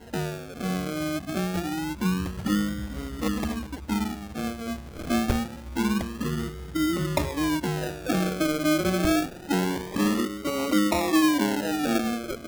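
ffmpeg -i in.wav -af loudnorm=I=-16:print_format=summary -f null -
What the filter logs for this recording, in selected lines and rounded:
Input Integrated:    -26.5 LUFS
Input True Peak:     -10.2 dBTP
Input LRA:             4.4 LU
Input Threshold:     -36.5 LUFS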